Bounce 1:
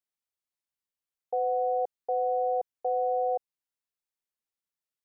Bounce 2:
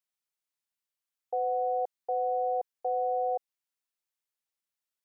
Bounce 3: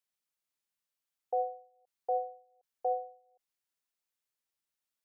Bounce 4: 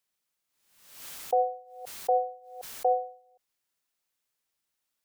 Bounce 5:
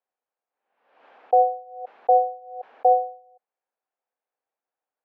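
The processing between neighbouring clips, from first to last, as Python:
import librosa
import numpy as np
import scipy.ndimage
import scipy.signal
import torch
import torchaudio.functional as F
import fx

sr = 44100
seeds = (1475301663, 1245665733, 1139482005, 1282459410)

y1 = fx.low_shelf(x, sr, hz=440.0, db=-9.5)
y1 = F.gain(torch.from_numpy(y1), 1.5).numpy()
y2 = fx.end_taper(y1, sr, db_per_s=130.0)
y3 = fx.pre_swell(y2, sr, db_per_s=70.0)
y3 = F.gain(torch.from_numpy(y3), 6.5).numpy()
y4 = fx.cabinet(y3, sr, low_hz=280.0, low_slope=24, high_hz=2000.0, hz=(330.0, 500.0, 760.0, 1300.0, 2000.0), db=(-4, 6, 9, -3, -6))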